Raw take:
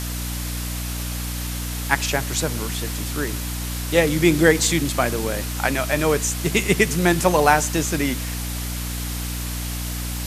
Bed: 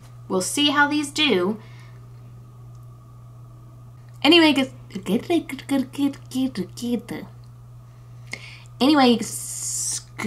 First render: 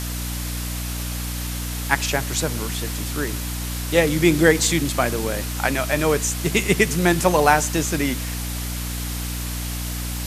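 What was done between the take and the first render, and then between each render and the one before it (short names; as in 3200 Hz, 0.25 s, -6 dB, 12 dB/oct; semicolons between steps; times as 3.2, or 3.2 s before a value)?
nothing audible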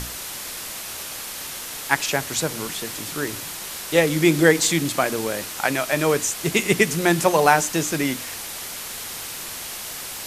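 notches 60/120/180/240/300 Hz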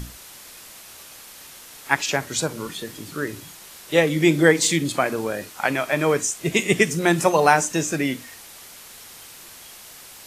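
noise print and reduce 10 dB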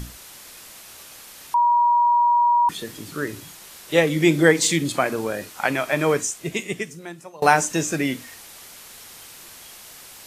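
1.54–2.69 bleep 957 Hz -14 dBFS; 6.14–7.42 fade out quadratic, to -24 dB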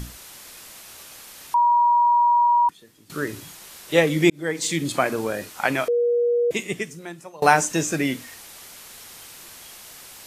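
2.47–3.1 upward expander 2.5:1, over -29 dBFS; 4.3–4.97 fade in; 5.88–6.51 bleep 478 Hz -17 dBFS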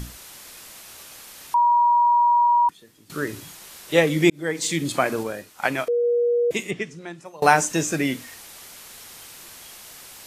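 5.23–6.04 upward expander, over -37 dBFS; 6.7–7.24 LPF 4000 Hz -> 7700 Hz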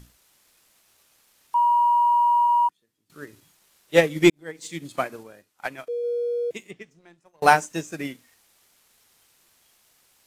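sample leveller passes 1; upward expander 2.5:1, over -23 dBFS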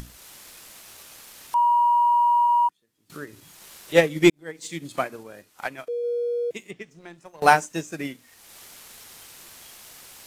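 upward compressor, threshold -30 dBFS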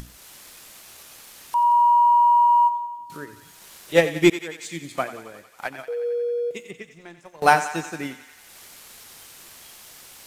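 thinning echo 90 ms, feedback 73%, high-pass 590 Hz, level -12 dB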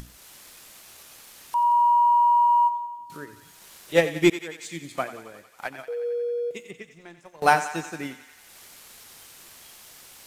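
gain -2.5 dB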